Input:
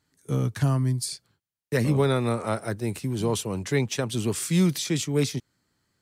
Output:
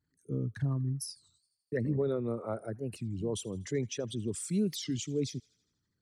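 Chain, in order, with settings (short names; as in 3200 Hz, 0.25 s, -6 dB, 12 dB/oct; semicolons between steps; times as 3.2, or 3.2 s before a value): formant sharpening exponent 2; on a send: thin delay 81 ms, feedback 60%, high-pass 1400 Hz, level -23 dB; on the sum: record warp 33 1/3 rpm, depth 250 cents; gain -8.5 dB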